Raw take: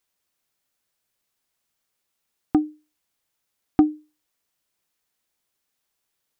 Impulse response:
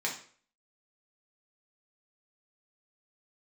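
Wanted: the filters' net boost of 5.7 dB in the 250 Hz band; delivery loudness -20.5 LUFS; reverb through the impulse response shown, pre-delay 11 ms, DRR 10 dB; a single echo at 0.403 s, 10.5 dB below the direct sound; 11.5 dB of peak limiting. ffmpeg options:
-filter_complex "[0:a]equalizer=f=250:t=o:g=7.5,alimiter=limit=-11dB:level=0:latency=1,aecho=1:1:403:0.299,asplit=2[a][b];[1:a]atrim=start_sample=2205,adelay=11[c];[b][c]afir=irnorm=-1:irlink=0,volume=-16dB[d];[a][d]amix=inputs=2:normalize=0,volume=6dB"

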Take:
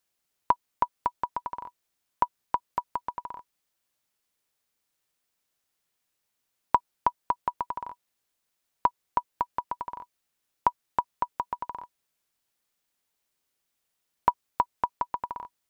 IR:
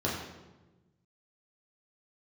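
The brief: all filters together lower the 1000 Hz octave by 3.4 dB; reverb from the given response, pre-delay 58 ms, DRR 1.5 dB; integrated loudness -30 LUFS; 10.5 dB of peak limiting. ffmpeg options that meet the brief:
-filter_complex "[0:a]equalizer=f=1k:t=o:g=-3.5,alimiter=limit=-18dB:level=0:latency=1,asplit=2[a][b];[1:a]atrim=start_sample=2205,adelay=58[c];[b][c]afir=irnorm=-1:irlink=0,volume=-10dB[d];[a][d]amix=inputs=2:normalize=0,volume=8dB"

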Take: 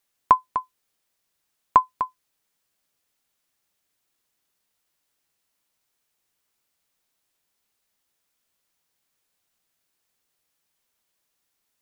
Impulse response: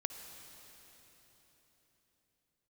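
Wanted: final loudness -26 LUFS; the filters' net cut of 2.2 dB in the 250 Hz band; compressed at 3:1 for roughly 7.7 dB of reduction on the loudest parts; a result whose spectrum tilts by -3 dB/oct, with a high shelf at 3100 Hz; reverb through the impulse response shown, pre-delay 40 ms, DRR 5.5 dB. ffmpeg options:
-filter_complex "[0:a]equalizer=f=250:t=o:g=-3,highshelf=f=3.1k:g=-4.5,acompressor=threshold=-22dB:ratio=3,asplit=2[a][b];[1:a]atrim=start_sample=2205,adelay=40[c];[b][c]afir=irnorm=-1:irlink=0,volume=-5.5dB[d];[a][d]amix=inputs=2:normalize=0,volume=4dB"

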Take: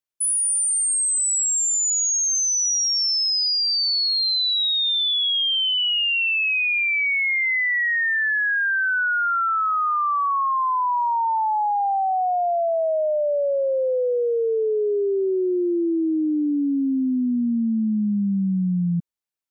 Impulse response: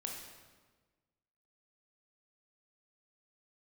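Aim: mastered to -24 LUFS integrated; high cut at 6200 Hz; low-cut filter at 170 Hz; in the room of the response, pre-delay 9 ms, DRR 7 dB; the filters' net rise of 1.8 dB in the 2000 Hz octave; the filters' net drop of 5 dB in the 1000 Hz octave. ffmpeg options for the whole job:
-filter_complex "[0:a]highpass=170,lowpass=6.2k,equalizer=f=1k:t=o:g=-8,equalizer=f=2k:t=o:g=4.5,asplit=2[a][b];[1:a]atrim=start_sample=2205,adelay=9[c];[b][c]afir=irnorm=-1:irlink=0,volume=-6.5dB[d];[a][d]amix=inputs=2:normalize=0,volume=-4dB"

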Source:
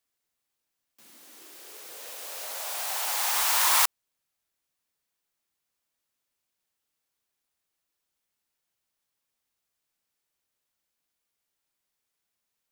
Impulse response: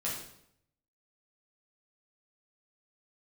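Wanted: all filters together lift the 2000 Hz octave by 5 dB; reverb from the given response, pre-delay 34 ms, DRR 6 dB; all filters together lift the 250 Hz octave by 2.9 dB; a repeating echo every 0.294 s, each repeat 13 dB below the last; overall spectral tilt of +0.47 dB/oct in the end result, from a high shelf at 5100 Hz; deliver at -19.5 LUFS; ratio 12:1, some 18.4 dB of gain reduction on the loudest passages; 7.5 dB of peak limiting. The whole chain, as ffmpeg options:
-filter_complex "[0:a]equalizer=f=250:t=o:g=4,equalizer=f=2k:t=o:g=7,highshelf=f=5.1k:g=-5.5,acompressor=threshold=-37dB:ratio=12,alimiter=level_in=11dB:limit=-24dB:level=0:latency=1,volume=-11dB,aecho=1:1:294|588|882:0.224|0.0493|0.0108,asplit=2[a][b];[1:a]atrim=start_sample=2205,adelay=34[c];[b][c]afir=irnorm=-1:irlink=0,volume=-10dB[d];[a][d]amix=inputs=2:normalize=0,volume=23.5dB"

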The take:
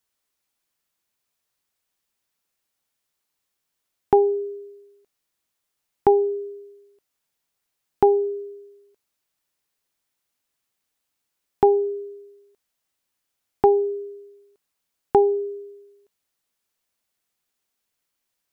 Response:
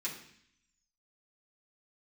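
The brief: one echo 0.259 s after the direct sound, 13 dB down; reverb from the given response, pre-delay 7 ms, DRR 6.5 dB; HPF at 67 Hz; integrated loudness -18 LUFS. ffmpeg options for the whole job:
-filter_complex "[0:a]highpass=67,aecho=1:1:259:0.224,asplit=2[a][b];[1:a]atrim=start_sample=2205,adelay=7[c];[b][c]afir=irnorm=-1:irlink=0,volume=-8.5dB[d];[a][d]amix=inputs=2:normalize=0,volume=3.5dB"

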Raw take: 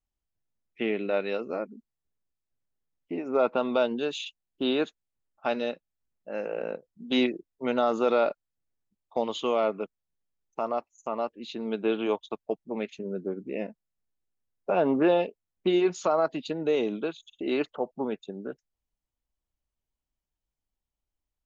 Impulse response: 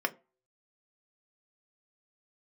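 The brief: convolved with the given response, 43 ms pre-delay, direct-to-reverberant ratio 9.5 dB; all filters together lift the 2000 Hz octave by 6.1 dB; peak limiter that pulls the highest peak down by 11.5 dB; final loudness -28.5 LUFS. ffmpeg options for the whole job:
-filter_complex "[0:a]equalizer=f=2k:t=o:g=8.5,alimiter=limit=-21.5dB:level=0:latency=1,asplit=2[a][b];[1:a]atrim=start_sample=2205,adelay=43[c];[b][c]afir=irnorm=-1:irlink=0,volume=-17.5dB[d];[a][d]amix=inputs=2:normalize=0,volume=4.5dB"

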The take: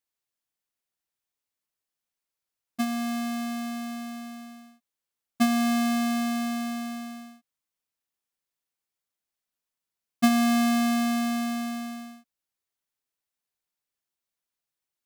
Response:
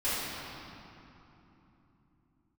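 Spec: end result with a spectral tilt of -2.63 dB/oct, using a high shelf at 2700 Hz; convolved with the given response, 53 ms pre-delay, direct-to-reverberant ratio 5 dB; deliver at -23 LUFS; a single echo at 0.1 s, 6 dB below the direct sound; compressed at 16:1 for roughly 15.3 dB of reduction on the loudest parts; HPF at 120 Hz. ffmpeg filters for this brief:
-filter_complex "[0:a]highpass=120,highshelf=f=2.7k:g=7,acompressor=threshold=-30dB:ratio=16,aecho=1:1:100:0.501,asplit=2[a][b];[1:a]atrim=start_sample=2205,adelay=53[c];[b][c]afir=irnorm=-1:irlink=0,volume=-15.5dB[d];[a][d]amix=inputs=2:normalize=0,volume=12.5dB"

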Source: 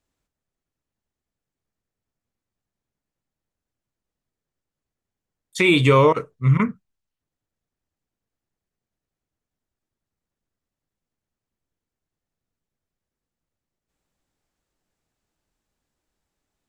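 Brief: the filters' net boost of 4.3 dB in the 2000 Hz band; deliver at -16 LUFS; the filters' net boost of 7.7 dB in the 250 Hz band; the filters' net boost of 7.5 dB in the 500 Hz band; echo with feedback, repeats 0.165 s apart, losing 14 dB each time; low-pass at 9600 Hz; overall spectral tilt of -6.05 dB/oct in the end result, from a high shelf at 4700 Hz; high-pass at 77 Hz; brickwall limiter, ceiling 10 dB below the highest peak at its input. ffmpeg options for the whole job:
-af "highpass=77,lowpass=9.6k,equalizer=f=250:t=o:g=8.5,equalizer=f=500:t=o:g=6,equalizer=f=2k:t=o:g=4,highshelf=f=4.7k:g=4,alimiter=limit=-7.5dB:level=0:latency=1,aecho=1:1:165|330:0.2|0.0399,volume=1.5dB"

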